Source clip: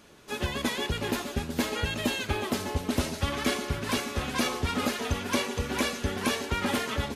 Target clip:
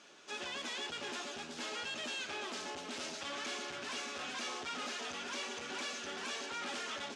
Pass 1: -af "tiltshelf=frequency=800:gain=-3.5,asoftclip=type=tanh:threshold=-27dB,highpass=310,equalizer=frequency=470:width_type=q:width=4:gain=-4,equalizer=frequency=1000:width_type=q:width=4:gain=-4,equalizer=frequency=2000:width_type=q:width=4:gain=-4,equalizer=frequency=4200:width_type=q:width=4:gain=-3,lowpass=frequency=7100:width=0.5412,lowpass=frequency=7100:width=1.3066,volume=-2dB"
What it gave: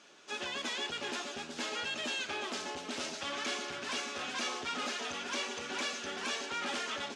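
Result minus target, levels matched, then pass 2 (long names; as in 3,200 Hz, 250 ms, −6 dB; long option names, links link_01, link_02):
soft clipping: distortion −5 dB
-af "tiltshelf=frequency=800:gain=-3.5,asoftclip=type=tanh:threshold=-34dB,highpass=310,equalizer=frequency=470:width_type=q:width=4:gain=-4,equalizer=frequency=1000:width_type=q:width=4:gain=-4,equalizer=frequency=2000:width_type=q:width=4:gain=-4,equalizer=frequency=4200:width_type=q:width=4:gain=-3,lowpass=frequency=7100:width=0.5412,lowpass=frequency=7100:width=1.3066,volume=-2dB"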